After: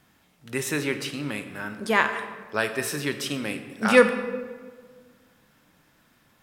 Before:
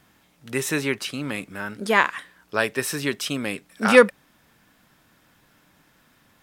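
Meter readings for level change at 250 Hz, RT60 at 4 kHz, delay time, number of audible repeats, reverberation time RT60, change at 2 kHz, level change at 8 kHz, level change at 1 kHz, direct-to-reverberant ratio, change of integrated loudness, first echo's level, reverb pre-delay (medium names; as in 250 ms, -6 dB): -1.5 dB, 0.95 s, no echo, no echo, 1.7 s, -2.0 dB, -2.5 dB, -2.5 dB, 7.5 dB, -2.5 dB, no echo, 21 ms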